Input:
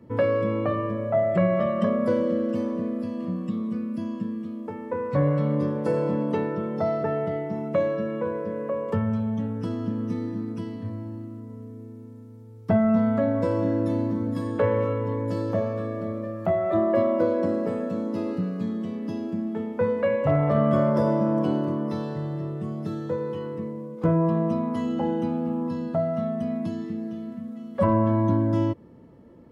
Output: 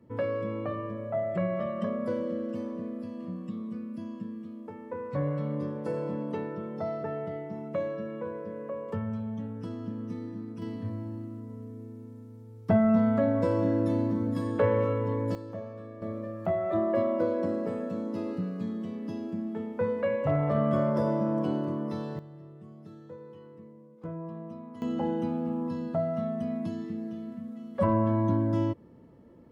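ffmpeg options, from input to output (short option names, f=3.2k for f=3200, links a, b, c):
-af "asetnsamples=n=441:p=0,asendcmd='10.62 volume volume -2dB;15.35 volume volume -13.5dB;16.02 volume volume -5dB;22.19 volume volume -17dB;24.82 volume volume -4dB',volume=-8dB"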